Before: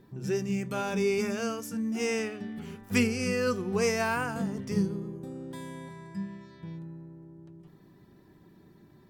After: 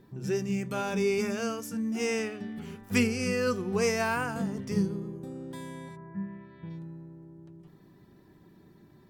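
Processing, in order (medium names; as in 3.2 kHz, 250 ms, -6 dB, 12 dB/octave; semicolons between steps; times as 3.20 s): 5.95–6.69 s: low-pass 1.4 kHz -> 3.6 kHz 24 dB/octave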